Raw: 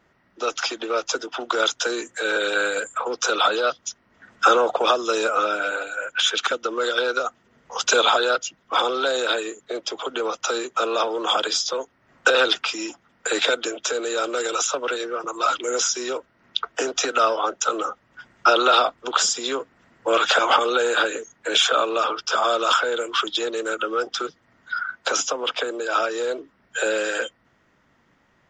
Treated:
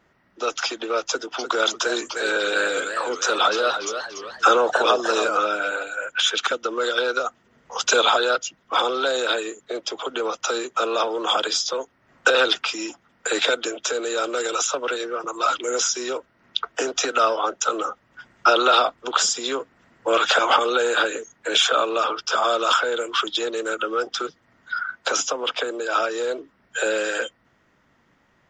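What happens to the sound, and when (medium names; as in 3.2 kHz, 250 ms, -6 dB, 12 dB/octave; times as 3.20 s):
1.02–5.37 s: modulated delay 296 ms, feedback 44%, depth 197 cents, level -8 dB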